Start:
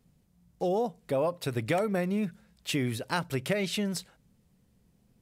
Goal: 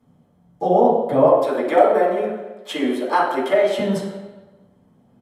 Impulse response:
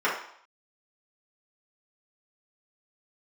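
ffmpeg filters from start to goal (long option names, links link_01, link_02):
-filter_complex "[0:a]asettb=1/sr,asplit=3[link_01][link_02][link_03];[link_01]atrim=end=1.264[link_04];[link_02]atrim=start=1.26:end=3.79,asetpts=PTS-STARTPTS,afade=type=in:duration=0.004:curve=qsin,afade=type=out:start_time=2.526:duration=0.004:curve=qsin,highpass=frequency=300:width=0.5412,highpass=frequency=300:width=1.3066[link_05];[link_03]atrim=start=3.786[link_06];[link_04][link_05]acrossfade=duration=0.004:curve1=hsin:curve2=qsin[link_07];[link_07][link_06]acrossfade=duration=0.004:curve1=qsin:curve2=hsin,asplit=2[link_08][link_09];[link_09]adelay=232,lowpass=frequency=2000:poles=1,volume=-22dB,asplit=2[link_10][link_11];[link_11]adelay=232,lowpass=frequency=2000:poles=1,volume=0.48,asplit=2[link_12][link_13];[link_13]adelay=232,lowpass=frequency=2000:poles=1,volume=0.48[link_14];[link_08][link_10][link_12][link_14]amix=inputs=4:normalize=0[link_15];[1:a]atrim=start_sample=2205,asetrate=26019,aresample=44100[link_16];[link_15][link_16]afir=irnorm=-1:irlink=0,volume=-5dB"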